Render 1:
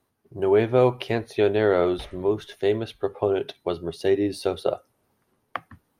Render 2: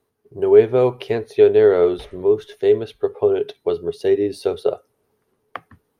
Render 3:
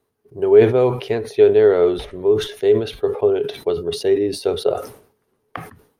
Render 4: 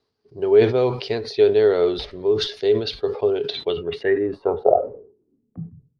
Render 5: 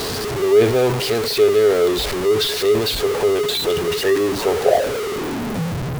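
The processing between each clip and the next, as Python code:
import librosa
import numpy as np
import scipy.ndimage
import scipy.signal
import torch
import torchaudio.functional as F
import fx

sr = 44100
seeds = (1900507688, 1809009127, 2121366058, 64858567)

y1 = fx.peak_eq(x, sr, hz=430.0, db=12.5, octaves=0.25)
y1 = y1 * 10.0 ** (-1.0 / 20.0)
y2 = fx.sustainer(y1, sr, db_per_s=110.0)
y3 = fx.filter_sweep_lowpass(y2, sr, from_hz=4700.0, to_hz=140.0, start_s=3.46, end_s=5.8, q=6.2)
y3 = y3 * 10.0 ** (-3.5 / 20.0)
y4 = y3 + 0.5 * 10.0 ** (-17.0 / 20.0) * np.sign(y3)
y4 = y4 * 10.0 ** (-1.0 / 20.0)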